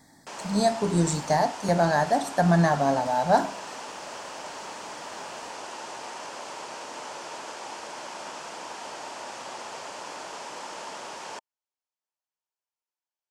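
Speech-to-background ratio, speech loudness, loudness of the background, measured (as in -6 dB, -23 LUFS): 14.0 dB, -24.0 LUFS, -38.0 LUFS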